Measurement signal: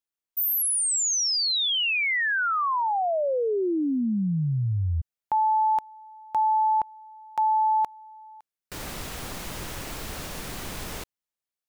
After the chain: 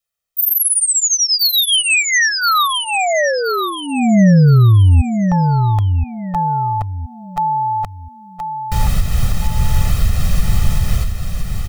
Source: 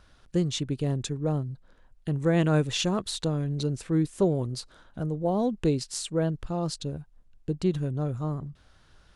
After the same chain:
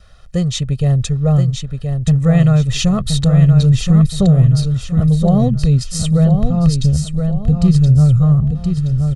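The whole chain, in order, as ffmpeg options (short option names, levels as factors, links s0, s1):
-af "asubboost=boost=7.5:cutoff=180,aecho=1:1:1.6:0.85,adynamicequalizer=threshold=0.0112:dfrequency=910:dqfactor=3.8:tfrequency=910:tqfactor=3.8:attack=5:release=100:ratio=0.375:range=2.5:mode=cutabove:tftype=bell,alimiter=limit=0.251:level=0:latency=1:release=255,aecho=1:1:1023|2046|3069|4092:0.501|0.175|0.0614|0.0215,volume=2.24"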